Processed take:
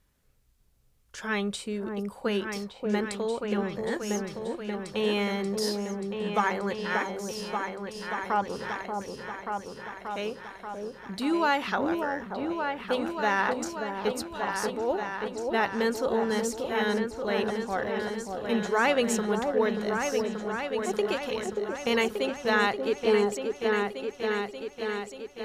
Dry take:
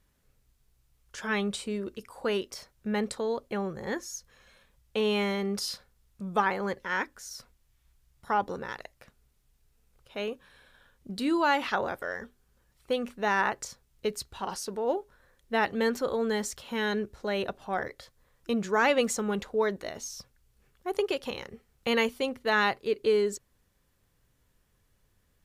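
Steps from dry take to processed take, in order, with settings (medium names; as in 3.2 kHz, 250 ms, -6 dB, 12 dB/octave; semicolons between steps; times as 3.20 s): delay with an opening low-pass 583 ms, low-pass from 750 Hz, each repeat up 2 oct, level -3 dB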